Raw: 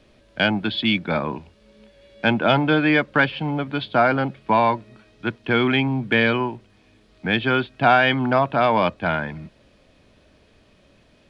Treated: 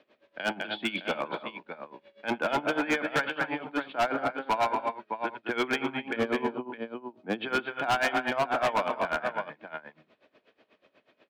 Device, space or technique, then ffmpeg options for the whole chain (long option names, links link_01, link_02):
helicopter radio: -filter_complex "[0:a]asettb=1/sr,asplit=3[link_01][link_02][link_03];[link_01]atrim=end=6.164[link_04];[link_02]atrim=start=6.16:end=7.41,asetpts=PTS-STARTPTS,afade=type=in:duration=0.004:curve=qsin,afade=type=out:start_time=1.246:duration=0.004:curve=qsin,equalizer=frequency=250:width_type=o:width=1:gain=7,equalizer=frequency=2000:width_type=o:width=1:gain=-12,equalizer=frequency=4000:width_type=o:width=1:gain=-6[link_05];[link_03]atrim=start=7.406[link_06];[link_04][link_05]acrossfade=duration=0.004:curve1=hsin:curve2=qsin[link_07];[link_07][link_06]acrossfade=duration=0.004:curve1=qsin:curve2=hsin,highpass=370,lowpass=2900,aecho=1:1:81|203|251|612:0.141|0.299|0.266|0.299,aeval=exprs='val(0)*pow(10,-19*(0.5-0.5*cos(2*PI*8.2*n/s))/20)':channel_layout=same,asoftclip=type=hard:threshold=-21dB"